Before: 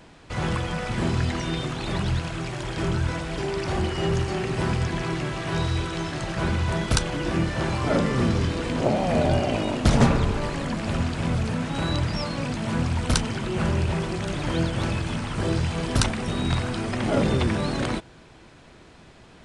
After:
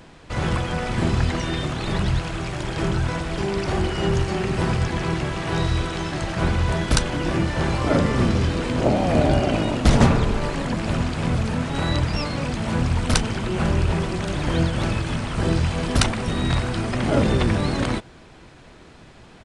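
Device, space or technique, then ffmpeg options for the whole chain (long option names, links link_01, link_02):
octave pedal: -filter_complex "[0:a]asettb=1/sr,asplit=3[link_01][link_02][link_03];[link_01]atrim=end=11.374[link_04];[link_02]atrim=start=11.37:end=12.43,asetpts=PTS-STARTPTS,afade=type=in:duration=0.004:curve=qsin,afade=type=out:start_time=1.056:duration=0.004:curve=qsin,bandreject=frequency=57.63:width_type=h:width=4,bandreject=frequency=115.26:width_type=h:width=4,bandreject=frequency=172.89:width_type=h:width=4,bandreject=frequency=230.52:width_type=h:width=4,bandreject=frequency=288.15:width_type=h:width=4,bandreject=frequency=345.78:width_type=h:width=4[link_05];[link_03]atrim=start=12.426[link_06];[link_04][link_05]acrossfade=duration=0.004:curve1=hsin:curve2=qsin[link_07];[link_07][link_06]acrossfade=duration=0.004:curve1=qsin:curve2=hsin,asplit=2[link_08][link_09];[link_09]asetrate=22050,aresample=44100,atempo=2,volume=-5dB[link_10];[link_08][link_10]amix=inputs=2:normalize=0,volume=2dB"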